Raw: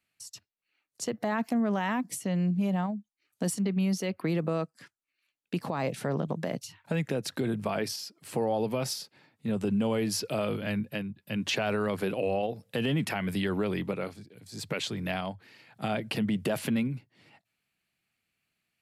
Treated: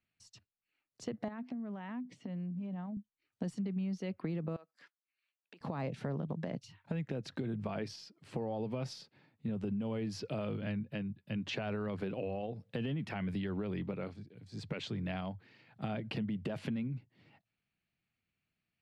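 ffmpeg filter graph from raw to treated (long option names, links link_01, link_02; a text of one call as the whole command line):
ffmpeg -i in.wav -filter_complex "[0:a]asettb=1/sr,asplit=3[link_01][link_02][link_03];[link_01]atrim=end=1.284[link_04];[link_02]atrim=start=1.28:end=2.97,asetpts=PTS-STARTPTS,afade=type=in:duration=0.004:curve=qsin,afade=type=out:start_time=1.686:duration=0.004:curve=qsin,equalizer=frequency=250:width=8:gain=11.5,acompressor=threshold=-34dB:ratio=16:attack=3.2:release=140:knee=1:detection=peak,highpass=130,lowpass=4200[link_05];[link_03]atrim=start=2.966[link_06];[link_04][link_05]acrossfade=duration=0.004:curve1=hsin:curve2=qsin[link_07];[link_07][link_06]acrossfade=duration=0.004:curve1=qsin:curve2=hsin,asettb=1/sr,asplit=3[link_08][link_09][link_10];[link_08]atrim=end=4.564[link_11];[link_09]atrim=start=4.56:end=5.61,asetpts=PTS-STARTPTS,afade=type=in:duration=0.004:curve=qsin,afade=type=out:start_time=1.046:duration=0.004:curve=qsin,acompressor=threshold=-39dB:ratio=16:attack=3.2:release=140:knee=1:detection=peak,highpass=550[link_12];[link_10]atrim=start=5.606[link_13];[link_11][link_12]acrossfade=duration=0.004:curve1=hsin:curve2=qsin[link_14];[link_14][link_13]acrossfade=duration=0.004:curve1=qsin:curve2=hsin,lowpass=4400,lowshelf=frequency=260:gain=9.5,acompressor=threshold=-26dB:ratio=6,volume=-7.5dB" out.wav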